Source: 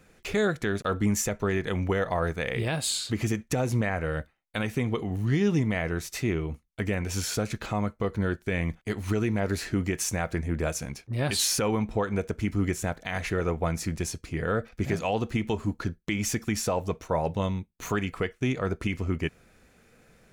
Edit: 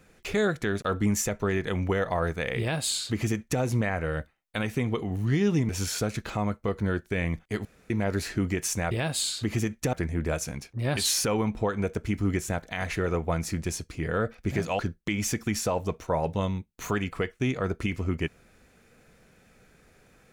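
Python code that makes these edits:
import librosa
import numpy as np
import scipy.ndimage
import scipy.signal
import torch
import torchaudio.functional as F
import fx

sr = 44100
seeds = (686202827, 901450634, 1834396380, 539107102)

y = fx.edit(x, sr, fx.duplicate(start_s=2.59, length_s=1.02, to_s=10.27),
    fx.cut(start_s=5.69, length_s=1.36),
    fx.room_tone_fill(start_s=9.01, length_s=0.25),
    fx.cut(start_s=15.13, length_s=0.67), tone=tone)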